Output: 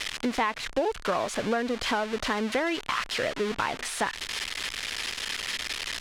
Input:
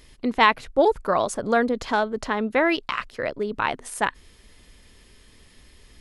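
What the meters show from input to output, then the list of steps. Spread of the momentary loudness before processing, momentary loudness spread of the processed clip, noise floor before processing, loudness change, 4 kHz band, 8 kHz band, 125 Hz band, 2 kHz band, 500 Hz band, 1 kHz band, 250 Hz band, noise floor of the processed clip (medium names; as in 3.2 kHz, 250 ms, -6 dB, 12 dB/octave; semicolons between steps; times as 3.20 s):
9 LU, 4 LU, -54 dBFS, -5.5 dB, +3.5 dB, +3.5 dB, -2.5 dB, -3.5 dB, -6.0 dB, -6.5 dB, -4.5 dB, -43 dBFS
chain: zero-crossing glitches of -9 dBFS; low-pass 2.8 kHz 12 dB/octave; compression 5:1, threshold -24 dBFS, peak gain reduction 11.5 dB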